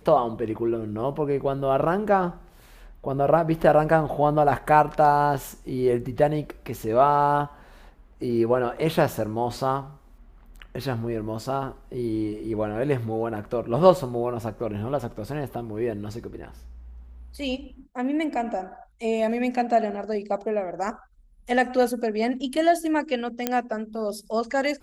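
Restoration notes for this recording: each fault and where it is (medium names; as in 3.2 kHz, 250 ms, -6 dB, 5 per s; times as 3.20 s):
23.47 s: pop -8 dBFS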